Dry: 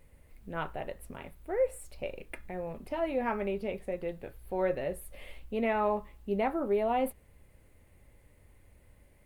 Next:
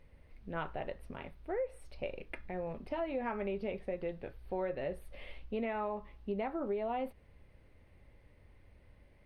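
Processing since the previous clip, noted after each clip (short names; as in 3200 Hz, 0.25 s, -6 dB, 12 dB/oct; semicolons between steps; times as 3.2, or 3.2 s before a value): polynomial smoothing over 15 samples; compressor 10:1, threshold -31 dBFS, peak gain reduction 9 dB; gain -1 dB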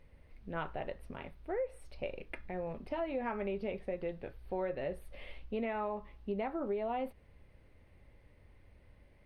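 nothing audible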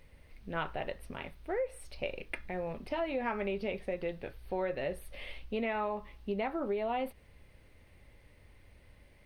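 high shelf 2200 Hz +9.5 dB; gain +1.5 dB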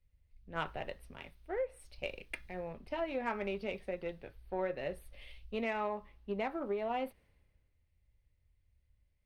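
added harmonics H 7 -32 dB, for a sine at -20.5 dBFS; three-band expander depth 70%; gain -2.5 dB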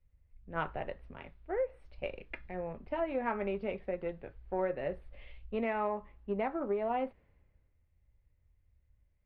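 LPF 1900 Hz 12 dB/oct; gain +3 dB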